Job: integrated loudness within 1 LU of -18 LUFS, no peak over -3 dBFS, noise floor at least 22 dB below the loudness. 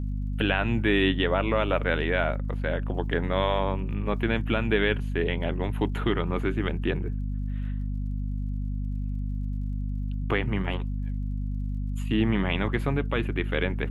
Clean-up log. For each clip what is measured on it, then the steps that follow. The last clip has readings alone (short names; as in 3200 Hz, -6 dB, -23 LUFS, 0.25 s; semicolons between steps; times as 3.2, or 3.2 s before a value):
ticks 57/s; hum 50 Hz; harmonics up to 250 Hz; hum level -27 dBFS; loudness -28.0 LUFS; peak -9.0 dBFS; loudness target -18.0 LUFS
-> de-click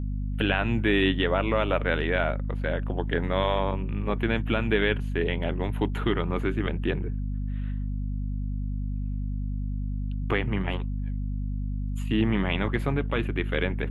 ticks 0.29/s; hum 50 Hz; harmonics up to 250 Hz; hum level -27 dBFS
-> notches 50/100/150/200/250 Hz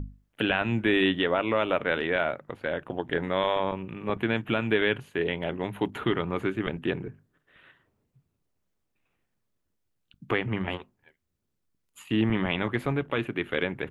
hum none; loudness -28.0 LUFS; peak -9.0 dBFS; loudness target -18.0 LUFS
-> gain +10 dB; limiter -3 dBFS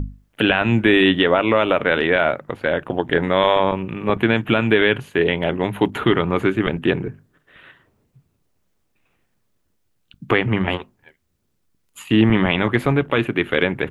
loudness -18.5 LUFS; peak -3.0 dBFS; noise floor -68 dBFS